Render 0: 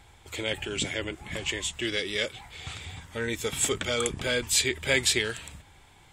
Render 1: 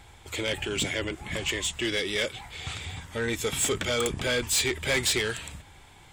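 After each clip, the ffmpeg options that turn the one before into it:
ffmpeg -i in.wav -af "asoftclip=type=tanh:threshold=-23.5dB,volume=3.5dB" out.wav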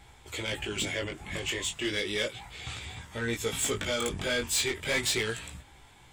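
ffmpeg -i in.wav -af "flanger=delay=16:depth=5.1:speed=0.34" out.wav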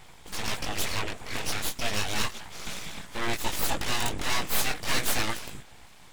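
ffmpeg -i in.wav -af "aeval=exprs='abs(val(0))':channel_layout=same,volume=5.5dB" out.wav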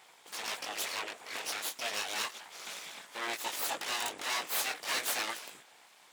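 ffmpeg -i in.wav -af "highpass=470,volume=-4.5dB" out.wav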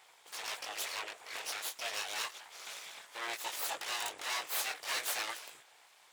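ffmpeg -i in.wav -af "equalizer=frequency=220:width_type=o:width=1:gain=-12,volume=-2.5dB" out.wav

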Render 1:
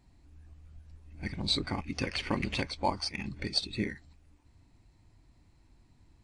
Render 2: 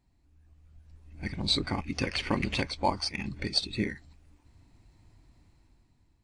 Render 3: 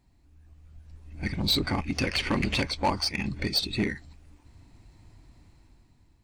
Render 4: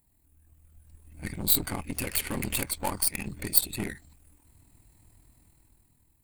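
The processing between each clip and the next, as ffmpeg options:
ffmpeg -i in.wav -af "dynaudnorm=framelen=390:gausssize=5:maxgain=11.5dB,volume=-8dB" out.wav
ffmpeg -i in.wav -af "asoftclip=type=tanh:threshold=-23.5dB,volume=5.5dB" out.wav
ffmpeg -i in.wav -af "aeval=exprs='0.126*(cos(1*acos(clip(val(0)/0.126,-1,1)))-cos(1*PI/2))+0.0224*(cos(4*acos(clip(val(0)/0.126,-1,1)))-cos(4*PI/2))':channel_layout=same,tremolo=f=40:d=0.519,aexciter=amount=15.6:drive=2.4:freq=8200,volume=-4dB" out.wav

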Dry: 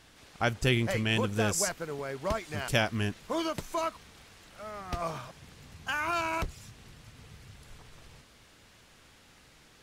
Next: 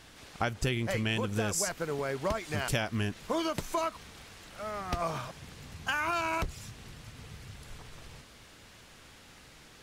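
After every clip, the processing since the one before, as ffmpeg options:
ffmpeg -i in.wav -af "acompressor=threshold=-31dB:ratio=6,volume=4dB" out.wav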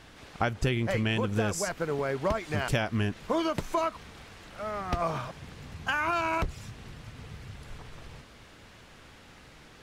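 ffmpeg -i in.wav -af "highshelf=frequency=4200:gain=-9.5,volume=3.5dB" out.wav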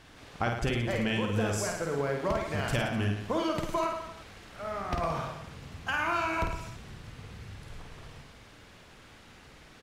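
ffmpeg -i in.wav -af "aecho=1:1:50|107.5|173.6|249.7|337.1:0.631|0.398|0.251|0.158|0.1,volume=-3dB" out.wav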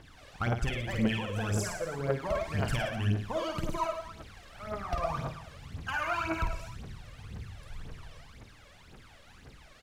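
ffmpeg -i in.wav -af "aeval=exprs='clip(val(0),-1,0.0794)':channel_layout=same,aphaser=in_gain=1:out_gain=1:delay=1.9:decay=0.69:speed=1.9:type=triangular,volume=-5dB" out.wav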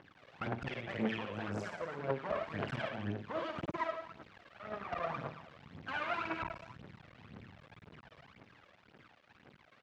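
ffmpeg -i in.wav -af "aeval=exprs='max(val(0),0)':channel_layout=same,highpass=150,lowpass=2800" out.wav

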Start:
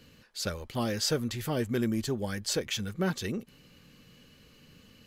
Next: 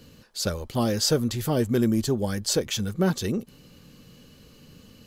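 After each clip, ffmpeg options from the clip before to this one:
ffmpeg -i in.wav -af "equalizer=frequency=2100:width=1:gain=-7.5,volume=7dB" out.wav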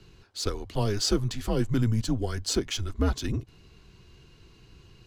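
ffmpeg -i in.wav -af "adynamicsmooth=sensitivity=5.5:basefreq=7000,afreqshift=-110,volume=-2dB" out.wav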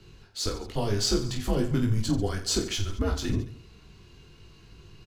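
ffmpeg -i in.wav -filter_complex "[0:a]alimiter=limit=-16.5dB:level=0:latency=1:release=286,asplit=2[link_01][link_02];[link_02]aecho=0:1:20|48|87.2|142.1|218.9:0.631|0.398|0.251|0.158|0.1[link_03];[link_01][link_03]amix=inputs=2:normalize=0" out.wav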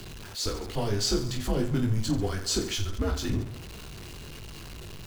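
ffmpeg -i in.wav -af "aeval=exprs='val(0)+0.5*0.0158*sgn(val(0))':channel_layout=same,volume=-2dB" out.wav

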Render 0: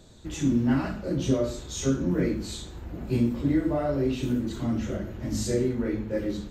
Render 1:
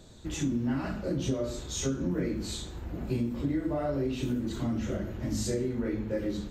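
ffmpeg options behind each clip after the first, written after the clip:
ffmpeg -i in.wav -af "acompressor=threshold=-27dB:ratio=4" out.wav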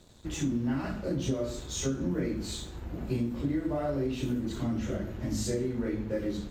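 ffmpeg -i in.wav -af "aeval=exprs='sgn(val(0))*max(abs(val(0))-0.0015,0)':channel_layout=same" out.wav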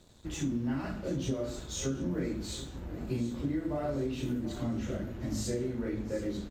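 ffmpeg -i in.wav -af "aecho=1:1:733|1466|2199|2932:0.178|0.0836|0.0393|0.0185,volume=-2.5dB" out.wav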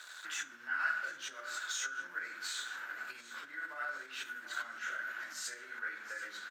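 ffmpeg -i in.wav -af "acompressor=threshold=-35dB:ratio=3,alimiter=level_in=14.5dB:limit=-24dB:level=0:latency=1:release=454,volume=-14.5dB,highpass=frequency=1500:width_type=q:width=9.6,volume=11dB" out.wav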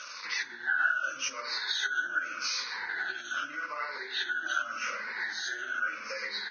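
ffmpeg -i in.wav -af "afftfilt=real='re*pow(10,17/40*sin(2*PI*(0.9*log(max(b,1)*sr/1024/100)/log(2)-(-0.84)*(pts-256)/sr)))':imag='im*pow(10,17/40*sin(2*PI*(0.9*log(max(b,1)*sr/1024/100)/log(2)-(-0.84)*(pts-256)/sr)))':win_size=1024:overlap=0.75,acompressor=threshold=-36dB:ratio=2.5,volume=7dB" -ar 16000 -c:a libvorbis -b:a 16k out.ogg

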